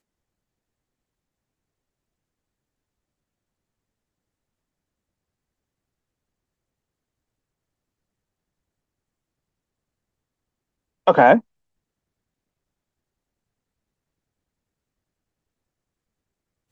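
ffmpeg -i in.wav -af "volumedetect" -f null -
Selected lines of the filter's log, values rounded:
mean_volume: -29.9 dB
max_volume: -1.4 dB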